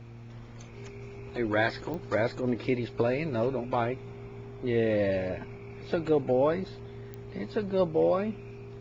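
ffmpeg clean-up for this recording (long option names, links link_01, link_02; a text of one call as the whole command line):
ffmpeg -i in.wav -af "adeclick=threshold=4,bandreject=frequency=116.3:width_type=h:width=4,bandreject=frequency=232.6:width_type=h:width=4,bandreject=frequency=348.9:width_type=h:width=4,bandreject=frequency=465.2:width_type=h:width=4,bandreject=frequency=400:width=30" out.wav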